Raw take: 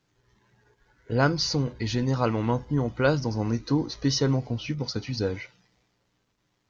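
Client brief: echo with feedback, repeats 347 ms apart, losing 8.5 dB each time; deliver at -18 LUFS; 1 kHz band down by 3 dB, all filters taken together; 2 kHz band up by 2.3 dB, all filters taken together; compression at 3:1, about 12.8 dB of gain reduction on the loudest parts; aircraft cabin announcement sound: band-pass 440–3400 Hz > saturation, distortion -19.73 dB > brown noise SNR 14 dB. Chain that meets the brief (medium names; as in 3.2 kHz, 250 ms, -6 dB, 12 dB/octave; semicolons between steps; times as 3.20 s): peaking EQ 1 kHz -6.5 dB; peaking EQ 2 kHz +7.5 dB; compression 3:1, threshold -36 dBFS; band-pass 440–3400 Hz; feedback delay 347 ms, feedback 38%, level -8.5 dB; saturation -28 dBFS; brown noise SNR 14 dB; trim +25 dB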